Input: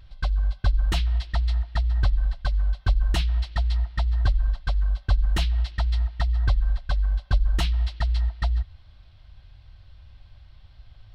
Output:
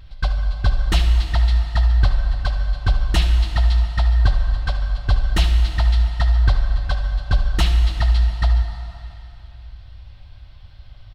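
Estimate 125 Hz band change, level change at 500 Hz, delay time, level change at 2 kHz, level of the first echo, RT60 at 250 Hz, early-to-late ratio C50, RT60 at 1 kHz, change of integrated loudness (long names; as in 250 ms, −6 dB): +6.0 dB, +7.0 dB, 74 ms, +7.0 dB, −12.5 dB, 2.9 s, 5.0 dB, 2.8 s, +5.5 dB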